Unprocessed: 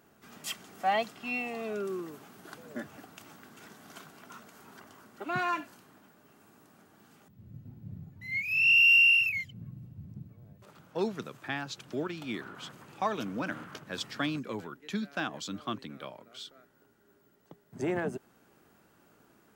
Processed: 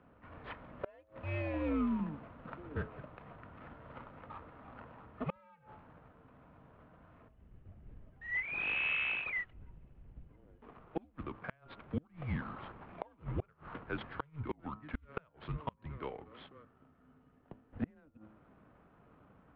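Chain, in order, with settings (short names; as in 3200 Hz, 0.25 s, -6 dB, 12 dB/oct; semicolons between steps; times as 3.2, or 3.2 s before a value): median filter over 15 samples; mistuned SSB -150 Hz 220–3200 Hz; de-hum 107.5 Hz, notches 13; flipped gate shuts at -27 dBFS, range -33 dB; gain +3 dB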